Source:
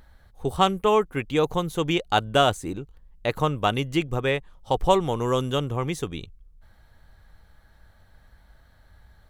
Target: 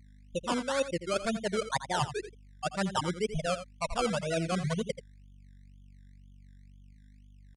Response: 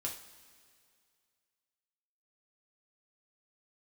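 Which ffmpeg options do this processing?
-af "afftfilt=real='re*gte(hypot(re,im),0.282)':imag='im*gte(hypot(re,im),0.282)':win_size=1024:overlap=0.75,equalizer=frequency=3200:width_type=o:width=0.44:gain=-7.5,areverse,acompressor=threshold=-28dB:ratio=10,areverse,asetrate=56448,aresample=44100,aeval=exprs='val(0)+0.00178*(sin(2*PI*50*n/s)+sin(2*PI*2*50*n/s)/2+sin(2*PI*3*50*n/s)/3+sin(2*PI*4*50*n/s)/4+sin(2*PI*5*50*n/s)/5)':channel_layout=same,acrusher=samples=19:mix=1:aa=0.000001:lfo=1:lforange=11.4:lforate=2.1,atempo=0.96,aecho=1:1:84:0.251,aresample=22050,aresample=44100,volume=1dB"

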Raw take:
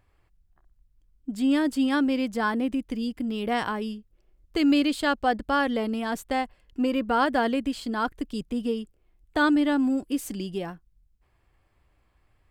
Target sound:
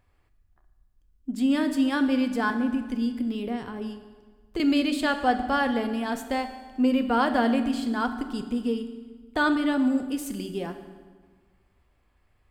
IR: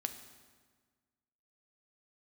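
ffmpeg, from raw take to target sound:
-filter_complex "[0:a]asettb=1/sr,asplit=3[link_01][link_02][link_03];[link_01]atrim=end=2.504[link_04];[link_02]atrim=start=2.5:end=4.6,asetpts=PTS-STARTPTS,afade=type=in:duration=0.004:curve=qsin,afade=type=out:start_time=2.096:duration=0.004:curve=qsin,acrossover=split=390[link_05][link_06];[link_06]acompressor=threshold=-38dB:ratio=5[link_07];[link_05][link_07]amix=inputs=2:normalize=0[link_08];[link_03]atrim=start=4.596[link_09];[link_04][link_08]acrossfade=duration=0.004:curve1=hsin:curve2=qsin[link_10];[link_10][link_09]acrossfade=duration=0.004:curve1=qsin:curve2=hsin[link_11];[1:a]atrim=start_sample=2205[link_12];[link_11][link_12]afir=irnorm=-1:irlink=0"

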